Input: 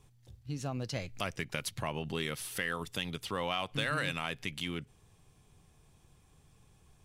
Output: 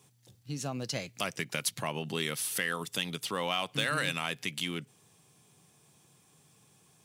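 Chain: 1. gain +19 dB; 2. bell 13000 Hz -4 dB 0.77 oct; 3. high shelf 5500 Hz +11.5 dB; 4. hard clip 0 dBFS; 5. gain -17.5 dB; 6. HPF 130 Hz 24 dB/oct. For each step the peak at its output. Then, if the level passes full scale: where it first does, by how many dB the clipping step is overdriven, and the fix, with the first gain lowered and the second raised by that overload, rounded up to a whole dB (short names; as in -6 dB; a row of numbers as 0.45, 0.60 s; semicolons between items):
+1.5, +1.0, +3.5, 0.0, -17.5, -14.0 dBFS; step 1, 3.5 dB; step 1 +15 dB, step 5 -13.5 dB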